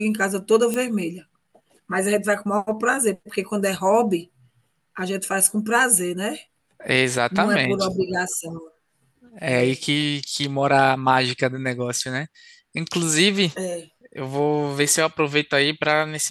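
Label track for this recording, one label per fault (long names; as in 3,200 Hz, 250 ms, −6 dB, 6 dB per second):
0.740000	0.740000	click −11 dBFS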